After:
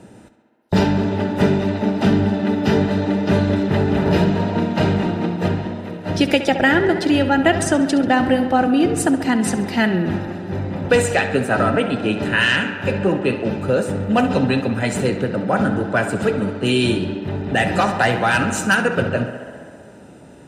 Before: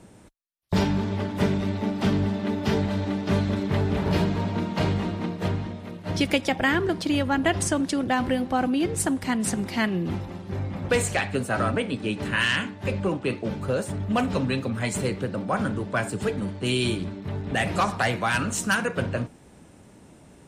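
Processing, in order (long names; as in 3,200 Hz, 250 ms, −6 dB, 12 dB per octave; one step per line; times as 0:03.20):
high-shelf EQ 4,500 Hz −6 dB
notch comb filter 1,100 Hz
tape delay 67 ms, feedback 85%, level −11 dB, low-pass 4,700 Hz
level +8 dB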